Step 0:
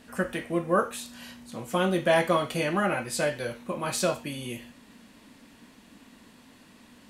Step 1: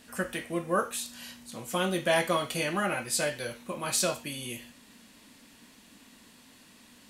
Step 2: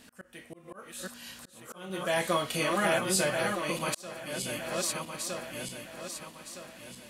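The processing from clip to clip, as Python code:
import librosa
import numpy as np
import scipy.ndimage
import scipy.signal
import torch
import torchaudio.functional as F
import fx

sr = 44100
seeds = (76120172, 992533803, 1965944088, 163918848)

y1 = fx.high_shelf(x, sr, hz=2600.0, db=9.5)
y1 = F.gain(torch.from_numpy(y1), -4.5).numpy()
y2 = fx.reverse_delay_fb(y1, sr, ms=632, feedback_pct=60, wet_db=-4.5)
y2 = fx.auto_swell(y2, sr, attack_ms=651.0)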